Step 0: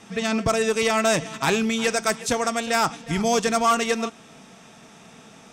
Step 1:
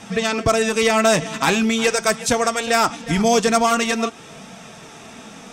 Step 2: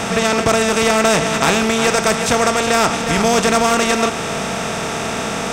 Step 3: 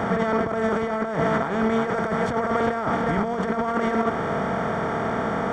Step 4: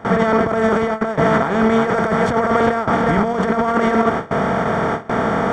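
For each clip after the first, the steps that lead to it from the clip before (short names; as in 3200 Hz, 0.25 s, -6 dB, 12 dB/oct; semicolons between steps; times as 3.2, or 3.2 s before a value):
in parallel at +0.5 dB: compressor, threshold -30 dBFS, peak gain reduction 13.5 dB; on the sum: flange 0.44 Hz, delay 1.2 ms, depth 3.6 ms, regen -52%; gain +6 dB
per-bin compression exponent 0.4; gain -2.5 dB
HPF 41 Hz; negative-ratio compressor -17 dBFS, ratio -0.5; polynomial smoothing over 41 samples; gain -4 dB
gate with hold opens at -16 dBFS; gain +7 dB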